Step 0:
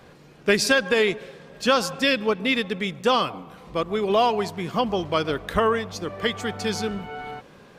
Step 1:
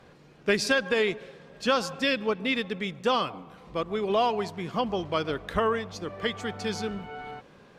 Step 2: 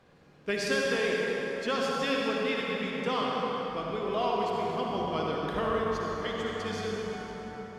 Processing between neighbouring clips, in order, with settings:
high shelf 11000 Hz -11.5 dB; gain -4.5 dB
reverb RT60 4.8 s, pre-delay 48 ms, DRR -3.5 dB; gain -7.5 dB

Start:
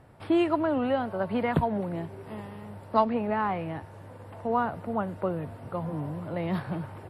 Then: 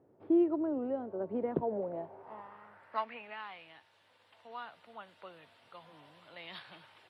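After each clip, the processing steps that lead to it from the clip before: requantised 12-bit, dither none; vocal rider within 4 dB 2 s; band-pass sweep 370 Hz -> 3500 Hz, 1.54–3.47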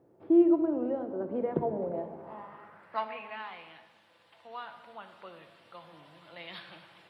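shoebox room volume 1100 m³, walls mixed, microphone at 0.77 m; gain +2 dB

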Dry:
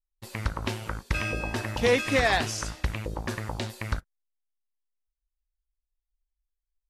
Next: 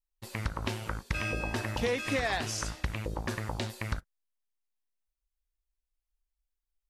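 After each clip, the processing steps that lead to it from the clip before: compressor, threshold -25 dBFS, peak gain reduction 8 dB; gain -1.5 dB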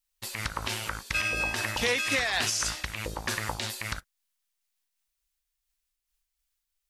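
tilt shelf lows -7.5 dB; limiter -21 dBFS, peak gain reduction 7.5 dB; noise-modulated level, depth 55%; gain +7 dB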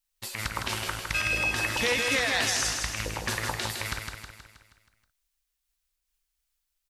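feedback echo 0.159 s, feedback 52%, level -5 dB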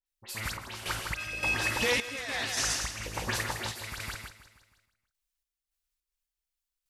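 dispersion highs, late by 64 ms, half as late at 2700 Hz; random-step tremolo 3.5 Hz, depth 75%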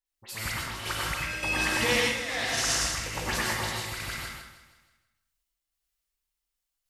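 plate-style reverb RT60 0.66 s, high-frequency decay 0.8×, pre-delay 80 ms, DRR -1.5 dB

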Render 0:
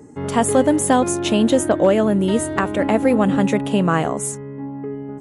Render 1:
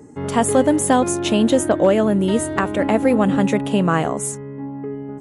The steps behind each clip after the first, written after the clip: nothing audible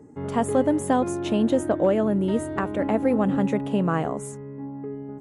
high shelf 2200 Hz -10 dB; gain -5 dB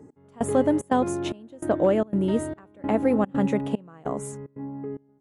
step gate "x...xxxx.xxx" 148 bpm -24 dB

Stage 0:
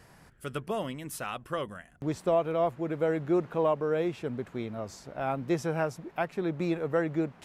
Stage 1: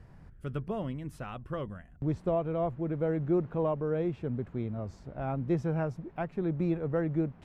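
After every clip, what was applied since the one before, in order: RIAA curve playback; gain -6 dB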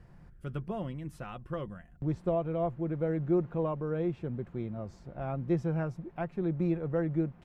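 comb 5.7 ms, depth 30%; gain -2 dB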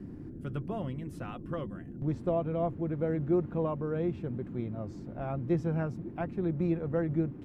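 band noise 78–320 Hz -43 dBFS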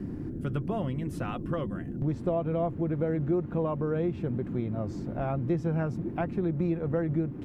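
compressor 2.5:1, threshold -35 dBFS, peak gain reduction 8.5 dB; gain +7.5 dB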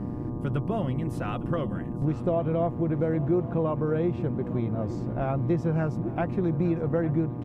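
buzz 120 Hz, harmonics 10, -41 dBFS -6 dB/oct; echo 0.858 s -17 dB; mismatched tape noise reduction decoder only; gain +2.5 dB

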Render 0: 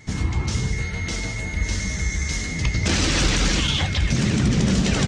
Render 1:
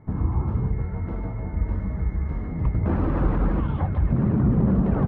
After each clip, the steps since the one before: Chebyshev low-pass 1100 Hz, order 3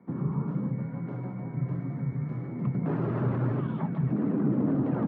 frequency shift +79 Hz; gain -6.5 dB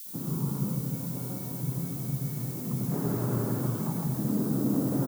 added noise violet -39 dBFS; bands offset in time highs, lows 60 ms, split 1800 Hz; on a send at -1.5 dB: reverb RT60 1.2 s, pre-delay 68 ms; on the sum: gain -3.5 dB

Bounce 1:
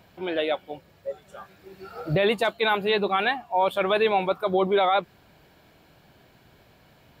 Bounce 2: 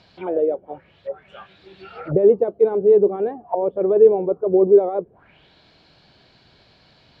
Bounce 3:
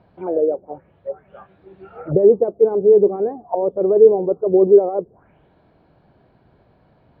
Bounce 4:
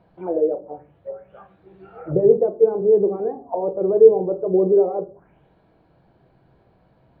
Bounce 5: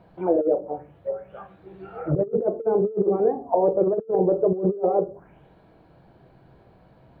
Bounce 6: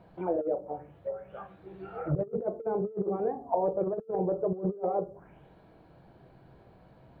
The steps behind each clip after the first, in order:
envelope low-pass 440–4800 Hz down, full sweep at -24 dBFS
LPF 1000 Hz 12 dB/oct; gain +2 dB
shoebox room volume 160 m³, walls furnished, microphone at 0.7 m; gain -3.5 dB
negative-ratio compressor -21 dBFS, ratio -0.5
dynamic EQ 370 Hz, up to -8 dB, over -33 dBFS, Q 0.74; gain -2.5 dB

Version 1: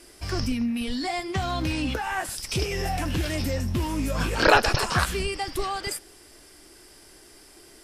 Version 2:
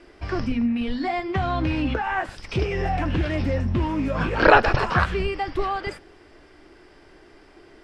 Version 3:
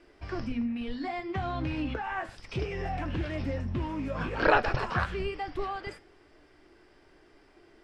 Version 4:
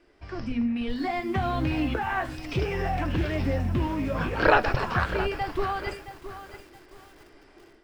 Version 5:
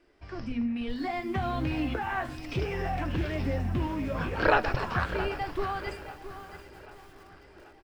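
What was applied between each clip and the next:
LPF 2300 Hz 12 dB/oct; notches 50/100/150/200/250 Hz; gain +4 dB
flange 1.1 Hz, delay 6.3 ms, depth 2.9 ms, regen +82%; gain -4 dB
AGC gain up to 8.5 dB; lo-fi delay 0.669 s, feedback 35%, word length 7-bit, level -12 dB; gain -3 dB
feedback echo 0.783 s, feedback 57%, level -19.5 dB; gain -3.5 dB

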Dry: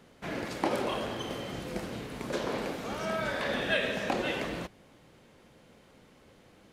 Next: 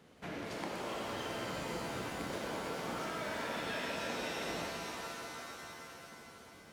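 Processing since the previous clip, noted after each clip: HPF 42 Hz; compressor, threshold -36 dBFS, peak gain reduction 12 dB; shimmer reverb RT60 3.4 s, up +7 st, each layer -2 dB, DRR 0.5 dB; gain -4.5 dB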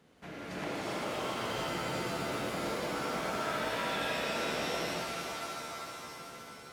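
non-linear reverb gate 0.42 s rising, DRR -7 dB; gain -3 dB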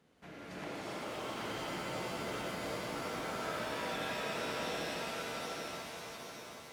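lo-fi delay 0.775 s, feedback 35%, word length 10-bit, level -3.5 dB; gain -5.5 dB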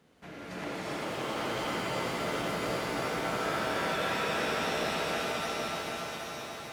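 dark delay 0.285 s, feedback 60%, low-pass 3400 Hz, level -3 dB; gain +5 dB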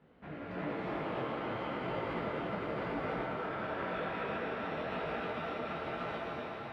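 limiter -28.5 dBFS, peak gain reduction 10 dB; air absorption 490 m; detuned doubles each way 34 cents; gain +6 dB

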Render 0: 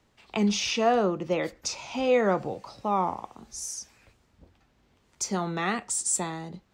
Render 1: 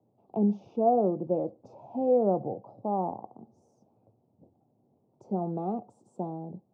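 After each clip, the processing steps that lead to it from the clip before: elliptic band-pass 110–760 Hz, stop band 40 dB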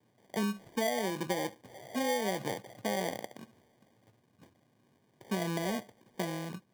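compressor 12:1, threshold -28 dBFS, peak gain reduction 10.5 dB; sample-and-hold 33×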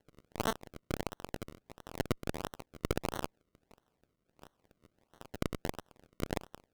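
differentiator; decimation with a swept rate 36×, swing 100% 1.5 Hz; tube stage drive 39 dB, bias 0.65; gain +17.5 dB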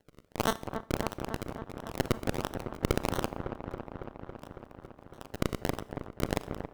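dark delay 0.277 s, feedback 76%, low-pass 1600 Hz, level -8 dB; Schroeder reverb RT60 0.55 s, combs from 28 ms, DRR 18 dB; gain +4.5 dB

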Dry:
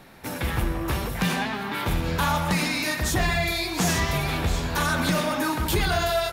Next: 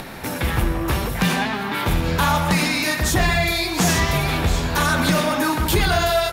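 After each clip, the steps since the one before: upward compressor, threshold -30 dBFS; gain +5 dB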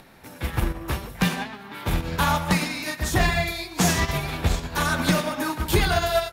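upward expander 2.5:1, over -26 dBFS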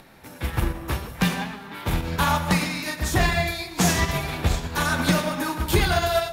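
plate-style reverb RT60 1.3 s, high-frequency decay 0.85×, DRR 11 dB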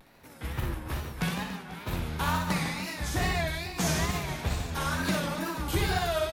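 reverse bouncing-ball echo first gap 60 ms, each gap 1.5×, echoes 5; wow and flutter 120 cents; gain -9 dB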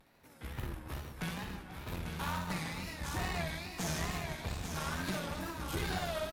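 tube stage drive 24 dB, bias 0.65; on a send: echo 0.845 s -6.5 dB; on the sum: gain -5 dB

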